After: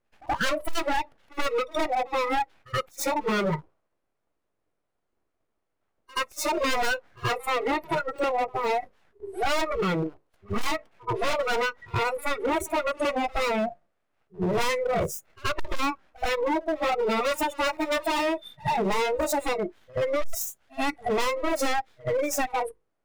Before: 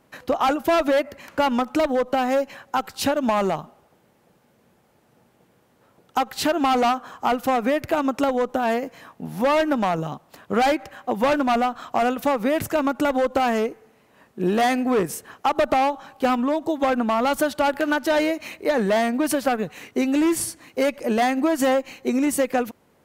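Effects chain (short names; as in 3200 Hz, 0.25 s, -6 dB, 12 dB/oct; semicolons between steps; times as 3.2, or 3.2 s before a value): tone controls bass +3 dB, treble -6 dB; notches 50/100/150/200/250/300/350/400/450 Hz; full-wave rectifier; formant shift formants -5 st; spectral noise reduction 25 dB; in parallel at -3 dB: limiter -23 dBFS, peak gain reduction 10.5 dB; on the sum: hard clip -24 dBFS, distortion -9 dB; reverse echo 77 ms -23 dB; gain +2.5 dB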